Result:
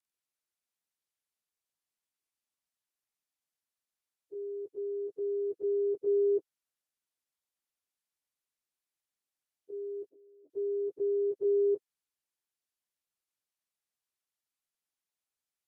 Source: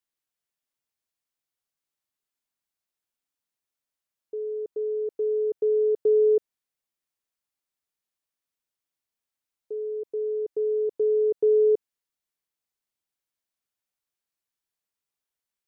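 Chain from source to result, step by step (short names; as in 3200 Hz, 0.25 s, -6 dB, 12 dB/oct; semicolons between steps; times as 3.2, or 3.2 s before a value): inharmonic rescaling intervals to 89%; harmonic-percussive split percussive +7 dB; 10.09–10.5 double band-pass 410 Hz, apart 0.99 oct; gain -7 dB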